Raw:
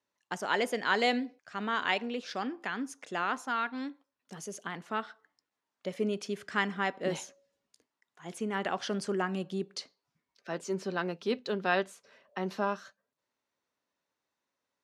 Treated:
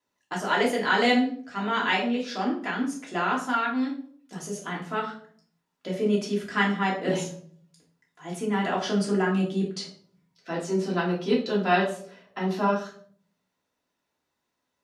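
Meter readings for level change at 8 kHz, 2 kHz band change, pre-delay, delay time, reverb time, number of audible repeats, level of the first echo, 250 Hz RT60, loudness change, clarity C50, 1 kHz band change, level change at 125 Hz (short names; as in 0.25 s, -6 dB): +5.0 dB, +5.0 dB, 3 ms, none, 0.55 s, none, none, 0.75 s, +7.0 dB, 7.5 dB, +6.5 dB, +10.5 dB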